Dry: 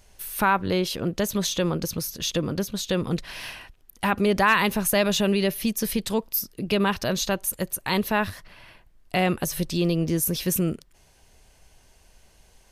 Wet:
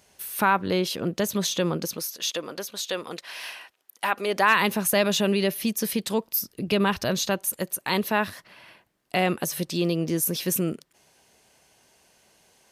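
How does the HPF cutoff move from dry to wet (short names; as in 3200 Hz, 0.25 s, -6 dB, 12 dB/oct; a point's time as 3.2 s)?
1.73 s 140 Hz
2.16 s 530 Hz
4.23 s 530 Hz
4.65 s 160 Hz
6.2 s 160 Hz
6.95 s 50 Hz
7.48 s 180 Hz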